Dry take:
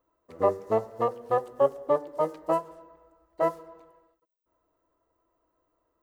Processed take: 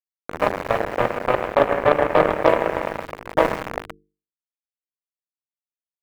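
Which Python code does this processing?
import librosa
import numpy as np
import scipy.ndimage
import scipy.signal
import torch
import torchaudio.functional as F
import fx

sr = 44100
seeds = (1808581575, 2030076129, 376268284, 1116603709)

y = fx.bin_compress(x, sr, power=0.2)
y = fx.doppler_pass(y, sr, speed_mps=9, closest_m=8.0, pass_at_s=2.19)
y = y + 10.0 ** (-14.0 / 20.0) * np.pad(y, (int(126 * sr / 1000.0), 0))[:len(y)]
y = np.where(np.abs(y) >= 10.0 ** (-21.5 / 20.0), y, 0.0)
y = fx.rider(y, sr, range_db=4, speed_s=2.0)
y = fx.cheby_harmonics(y, sr, harmonics=(7,), levels_db=(-16,), full_scale_db=-6.0)
y = fx.high_shelf(y, sr, hz=2800.0, db=-10.0)
y = fx.hum_notches(y, sr, base_hz=50, count=9)
y = y * 10.0 ** (6.0 / 20.0)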